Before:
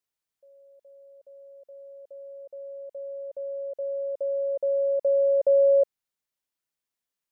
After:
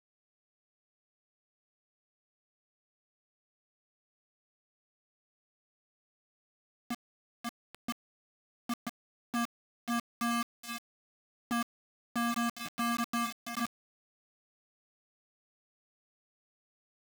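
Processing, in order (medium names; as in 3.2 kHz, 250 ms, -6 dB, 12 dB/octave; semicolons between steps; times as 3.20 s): random holes in the spectrogram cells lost 65%; sample-and-hold 40×; level-controlled noise filter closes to 400 Hz, open at -28.5 dBFS; FFT filter 170 Hz 0 dB, 240 Hz -1 dB, 350 Hz +8 dB, 510 Hz -3 dB, 740 Hz -1 dB, 1.1 kHz +6 dB, 1.5 kHz -17 dB, 2.1 kHz +8 dB, 3.2 kHz +11 dB, 4.7 kHz -5 dB; peak limiter -22 dBFS, peak gain reduction 11.5 dB; plate-style reverb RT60 1.1 s, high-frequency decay 0.95×, pre-delay 80 ms, DRR 10.5 dB; overload inside the chain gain 33.5 dB; speed mistake 78 rpm record played at 33 rpm; word length cut 6-bit, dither none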